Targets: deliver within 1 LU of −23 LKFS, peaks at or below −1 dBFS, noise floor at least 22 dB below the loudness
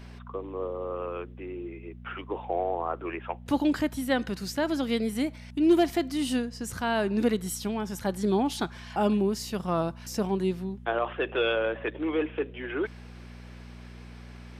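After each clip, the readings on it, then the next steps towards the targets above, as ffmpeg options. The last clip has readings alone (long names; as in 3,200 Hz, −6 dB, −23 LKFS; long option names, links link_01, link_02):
mains hum 60 Hz; hum harmonics up to 240 Hz; level of the hum −42 dBFS; integrated loudness −29.0 LKFS; sample peak −13.5 dBFS; target loudness −23.0 LKFS
→ -af "bandreject=frequency=60:width_type=h:width=4,bandreject=frequency=120:width_type=h:width=4,bandreject=frequency=180:width_type=h:width=4,bandreject=frequency=240:width_type=h:width=4"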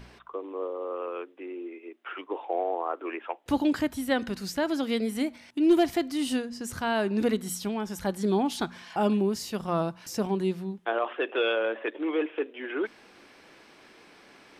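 mains hum none found; integrated loudness −29.5 LKFS; sample peak −13.5 dBFS; target loudness −23.0 LKFS
→ -af "volume=6.5dB"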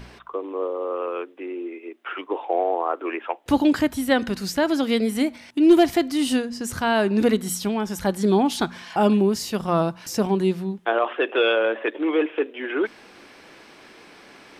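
integrated loudness −23.0 LKFS; sample peak −7.0 dBFS; background noise floor −48 dBFS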